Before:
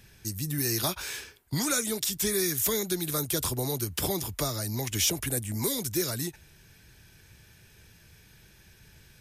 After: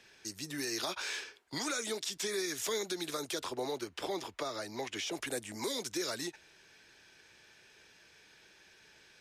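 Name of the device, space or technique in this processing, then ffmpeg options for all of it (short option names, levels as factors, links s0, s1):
DJ mixer with the lows and highs turned down: -filter_complex "[0:a]acrossover=split=290 7200:gain=0.0708 1 0.0794[s0][s1][s2];[s0][s1][s2]amix=inputs=3:normalize=0,alimiter=level_in=1.19:limit=0.0631:level=0:latency=1:release=68,volume=0.841,asettb=1/sr,asplit=3[s3][s4][s5];[s3]atrim=end=3.394[s6];[s4]atrim=start=3.39:end=5.12,asetpts=PTS-STARTPTS,afade=t=in:d=0.004:c=qsin,afade=t=out:st=1.726:d=0.004:c=qsin,bass=f=250:g=-2,treble=f=4000:g=-8[s7];[s5]atrim=start=5.116[s8];[s6][s7]acrossfade=d=0.004:c1=hsin:c2=qsin[s9];[s9][s8]acrossfade=d=0.004:c1=qsin:c2=hsin"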